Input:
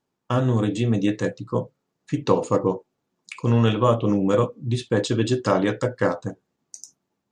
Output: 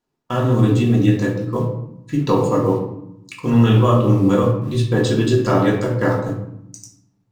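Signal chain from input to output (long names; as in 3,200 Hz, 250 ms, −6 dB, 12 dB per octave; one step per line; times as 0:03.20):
low-shelf EQ 61 Hz +3.5 dB
in parallel at −11 dB: bit reduction 6 bits
on the sum: convolution reverb RT60 0.80 s, pre-delay 3 ms, DRR −2 dB
level −3 dB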